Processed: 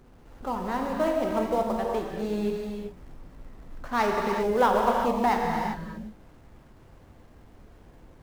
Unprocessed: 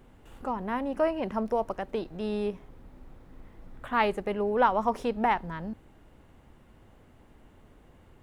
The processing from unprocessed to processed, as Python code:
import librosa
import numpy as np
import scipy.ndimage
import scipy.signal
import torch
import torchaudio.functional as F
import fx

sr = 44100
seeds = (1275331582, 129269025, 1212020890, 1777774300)

p1 = scipy.signal.medfilt(x, 15)
p2 = fx.quant_companded(p1, sr, bits=4)
p3 = p1 + F.gain(torch.from_numpy(p2), -8.5).numpy()
p4 = fx.rev_gated(p3, sr, seeds[0], gate_ms=420, shape='flat', drr_db=0.0)
y = F.gain(torch.from_numpy(p4), -2.5).numpy()